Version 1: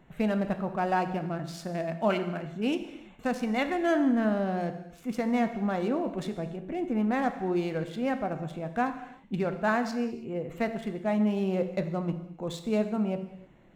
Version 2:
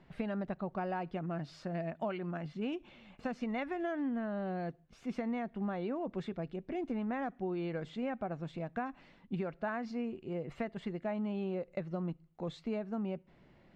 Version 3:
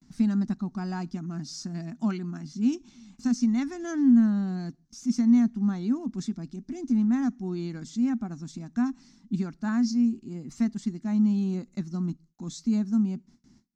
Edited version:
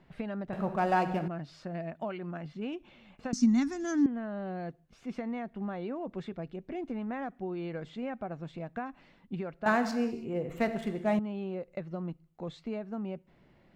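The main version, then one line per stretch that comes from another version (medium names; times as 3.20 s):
2
0.53–1.28 s: from 1
3.33–4.06 s: from 3
9.66–11.19 s: from 1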